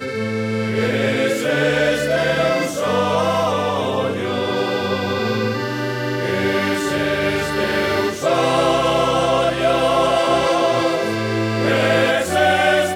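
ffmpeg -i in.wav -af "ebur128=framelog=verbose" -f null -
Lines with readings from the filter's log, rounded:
Integrated loudness:
  I:         -18.2 LUFS
  Threshold: -28.2 LUFS
Loudness range:
  LRA:         3.5 LU
  Threshold: -38.4 LUFS
  LRA low:   -20.4 LUFS
  LRA high:  -16.9 LUFS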